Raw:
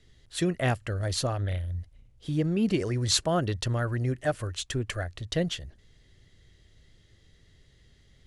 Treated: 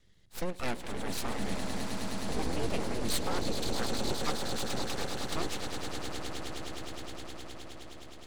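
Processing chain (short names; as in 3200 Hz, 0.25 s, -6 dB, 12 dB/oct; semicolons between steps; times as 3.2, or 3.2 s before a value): 3.09–3.68 spectral contrast raised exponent 1.7; swelling echo 0.104 s, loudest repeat 8, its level -10 dB; full-wave rectifier; gain -5 dB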